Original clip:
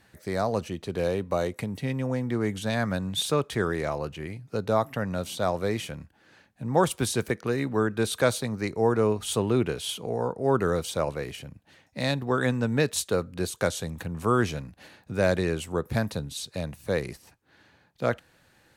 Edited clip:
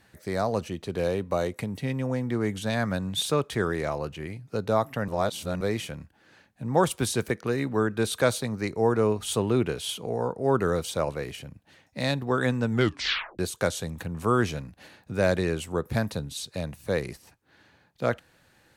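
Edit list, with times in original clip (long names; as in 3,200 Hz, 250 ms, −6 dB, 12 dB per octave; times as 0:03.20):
0:05.08–0:05.61: reverse
0:12.70: tape stop 0.69 s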